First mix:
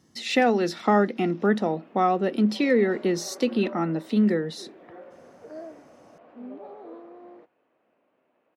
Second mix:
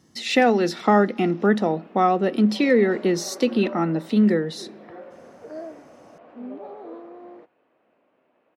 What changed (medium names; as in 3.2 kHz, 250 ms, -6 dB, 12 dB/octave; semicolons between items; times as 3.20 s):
background +4.0 dB; reverb: on, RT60 1.7 s